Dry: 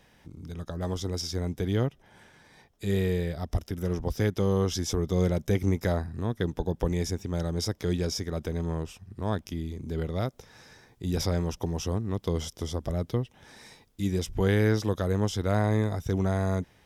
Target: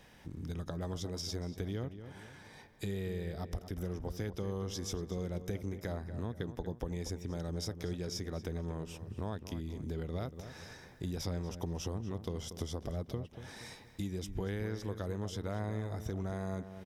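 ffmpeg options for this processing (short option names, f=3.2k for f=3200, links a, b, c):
-filter_complex "[0:a]acompressor=threshold=-37dB:ratio=6,asplit=2[a][b];[b]adelay=236,lowpass=f=2.3k:p=1,volume=-10.5dB,asplit=2[c][d];[d]adelay=236,lowpass=f=2.3k:p=1,volume=0.43,asplit=2[e][f];[f]adelay=236,lowpass=f=2.3k:p=1,volume=0.43,asplit=2[g][h];[h]adelay=236,lowpass=f=2.3k:p=1,volume=0.43,asplit=2[i][j];[j]adelay=236,lowpass=f=2.3k:p=1,volume=0.43[k];[c][e][g][i][k]amix=inputs=5:normalize=0[l];[a][l]amix=inputs=2:normalize=0,volume=1dB"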